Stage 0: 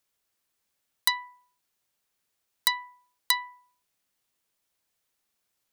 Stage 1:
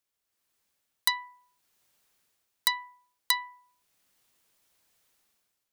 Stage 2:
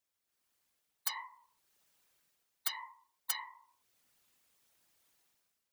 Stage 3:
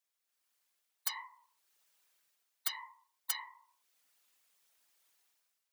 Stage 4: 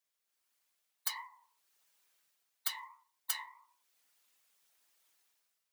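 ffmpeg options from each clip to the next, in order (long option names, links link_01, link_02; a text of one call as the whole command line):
ffmpeg -i in.wav -af "dynaudnorm=framelen=140:gausssize=7:maxgain=14dB,volume=-6dB" out.wav
ffmpeg -i in.wav -af "afftfilt=real='hypot(re,im)*cos(2*PI*random(0))':imag='hypot(re,im)*sin(2*PI*random(1))':win_size=512:overlap=0.75,afftfilt=real='re*lt(hypot(re,im),0.0501)':imag='im*lt(hypot(re,im),0.0501)':win_size=1024:overlap=0.75,volume=3.5dB" out.wav
ffmpeg -i in.wav -af "highpass=frequency=750:poles=1" out.wav
ffmpeg -i in.wav -af "acrusher=bits=7:mode=log:mix=0:aa=0.000001,flanger=delay=6:depth=7.8:regen=62:speed=1.6:shape=sinusoidal,volume=4.5dB" out.wav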